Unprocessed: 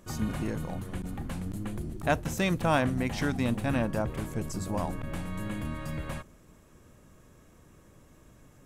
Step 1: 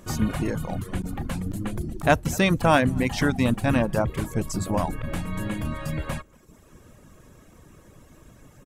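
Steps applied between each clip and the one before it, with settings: outdoor echo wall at 40 m, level -18 dB; reverb removal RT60 0.7 s; gain +7.5 dB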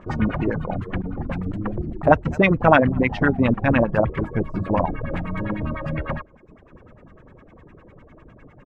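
LFO low-pass sine 9.9 Hz 420–2500 Hz; gain +2 dB

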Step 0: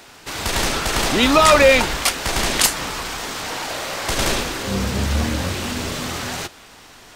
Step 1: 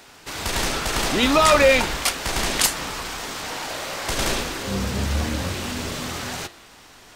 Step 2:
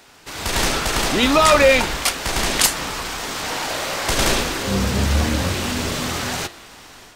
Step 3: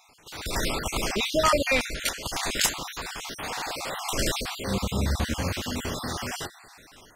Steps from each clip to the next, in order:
de-hum 113.9 Hz, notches 39; gain -3 dB
AGC gain up to 7 dB; gain -1.5 dB
random spectral dropouts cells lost 43%; gain -6 dB

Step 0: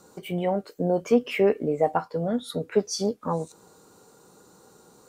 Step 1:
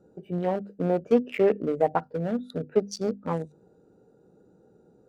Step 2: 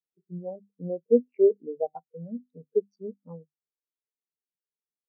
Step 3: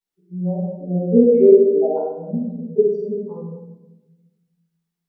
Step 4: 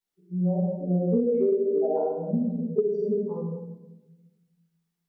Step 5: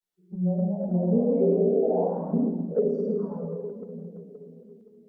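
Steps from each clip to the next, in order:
Wiener smoothing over 41 samples; notches 50/100/150/200/250 Hz
in parallel at 0 dB: compressor 5:1, threshold -33 dBFS, peak gain reduction 16 dB; on the sum: short-mantissa float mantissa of 2-bit; spectral expander 2.5:1
reverb RT60 1.0 s, pre-delay 3 ms, DRR -13 dB; gain -5.5 dB
compressor 12:1, threshold -20 dBFS, peak gain reduction 15 dB
split-band echo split 460 Hz, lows 0.521 s, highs 0.107 s, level -8 dB; envelope flanger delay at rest 11.5 ms, full sweep at -20 dBFS; echoes that change speed 0.284 s, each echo +2 st, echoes 3, each echo -6 dB

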